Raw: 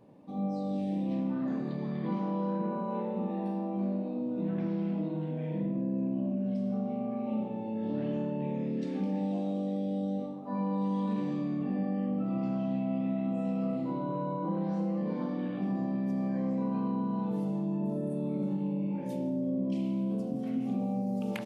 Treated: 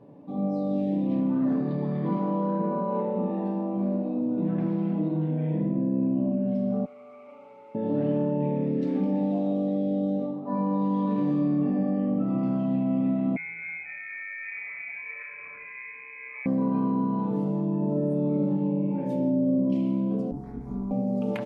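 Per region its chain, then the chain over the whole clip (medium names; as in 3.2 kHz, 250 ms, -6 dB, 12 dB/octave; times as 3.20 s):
6.85–7.75 s: one-bit delta coder 64 kbps, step -47 dBFS + two resonant band-passes 1.7 kHz, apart 0.75 oct + comb 7.1 ms, depth 72%
13.36–16.46 s: inverse Chebyshev high-pass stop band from 180 Hz + distance through air 160 m + frequency inversion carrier 2.8 kHz
20.31–20.91 s: AM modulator 200 Hz, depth 90% + static phaser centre 1.2 kHz, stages 4 + doubling 21 ms -2 dB
whole clip: high-pass 470 Hz 6 dB/octave; tilt EQ -4 dB/octave; comb 7 ms, depth 39%; trim +5 dB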